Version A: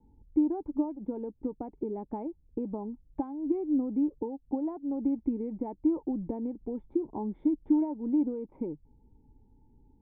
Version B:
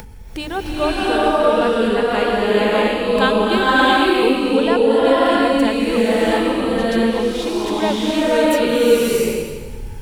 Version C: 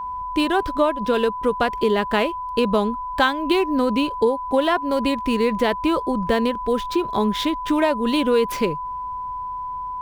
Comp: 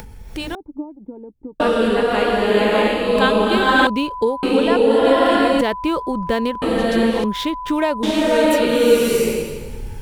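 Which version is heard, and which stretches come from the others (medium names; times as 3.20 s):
B
0.55–1.60 s: from A
3.87–4.43 s: from C
5.61–6.62 s: from C
7.24–8.03 s: from C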